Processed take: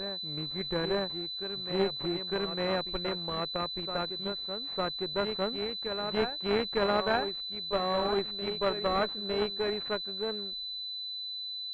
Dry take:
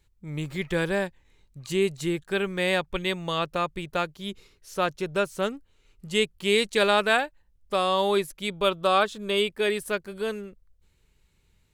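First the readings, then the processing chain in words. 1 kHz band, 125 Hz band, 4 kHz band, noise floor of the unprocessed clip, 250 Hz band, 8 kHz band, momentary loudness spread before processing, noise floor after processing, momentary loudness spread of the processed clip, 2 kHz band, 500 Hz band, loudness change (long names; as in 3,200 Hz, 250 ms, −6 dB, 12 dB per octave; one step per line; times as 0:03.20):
−6.0 dB, −6.0 dB, +0.5 dB, −66 dBFS, −5.0 dB, below −25 dB, 13 LU, −39 dBFS, 6 LU, −10.0 dB, −5.0 dB, −5.5 dB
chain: in parallel at −9.5 dB: sample-and-hold swept by an LFO 28×, swing 100% 2.5 Hz
on the sum: noise gate with hold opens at −50 dBFS
parametric band 120 Hz −9.5 dB 0.75 octaves
on a send: backwards echo 905 ms −7.5 dB
on the sum: harmonic generator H 4 −16 dB, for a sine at −7 dBFS
switching amplifier with a slow clock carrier 4,000 Hz
level −7.5 dB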